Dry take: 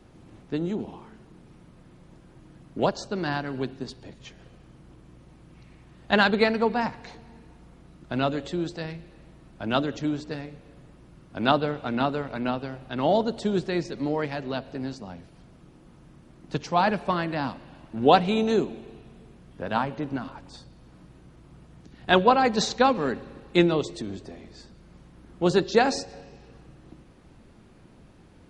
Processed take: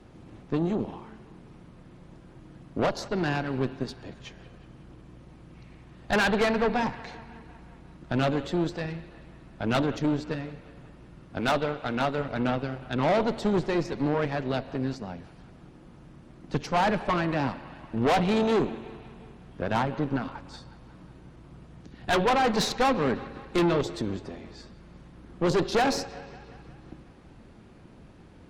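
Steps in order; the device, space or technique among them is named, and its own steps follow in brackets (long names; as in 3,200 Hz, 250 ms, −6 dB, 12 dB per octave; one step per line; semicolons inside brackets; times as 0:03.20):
0:11.40–0:12.18: low-shelf EQ 300 Hz −9 dB
tube preamp driven hard (tube saturation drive 26 dB, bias 0.75; high-shelf EQ 6,300 Hz −7 dB)
delay with a band-pass on its return 182 ms, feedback 65%, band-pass 1,600 Hz, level −17.5 dB
level +6.5 dB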